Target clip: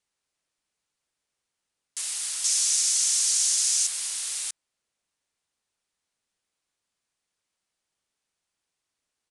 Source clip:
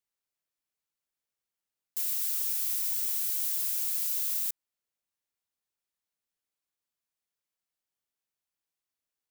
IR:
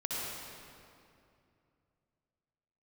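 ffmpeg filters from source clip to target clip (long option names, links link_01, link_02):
-filter_complex "[0:a]asettb=1/sr,asplit=3[link_01][link_02][link_03];[link_01]atrim=end=2.444[link_04];[link_02]atrim=start=2.44:end=3.87,asetpts=PTS-STARTPTS,afade=type=in:duration=0.004:curve=qsin,afade=type=out:start_time=1.426:duration=0.004:curve=qsin,equalizer=frequency=6200:width=1.1:gain=11.5[link_05];[link_03]atrim=start=3.866[link_06];[link_04][link_05]acrossfade=duration=0.004:curve1=hsin:curve2=qsin[link_07];[link_07][link_06]acrossfade=duration=0.004:curve1=qsin:curve2=hsin,aresample=22050,aresample=44100,volume=9dB"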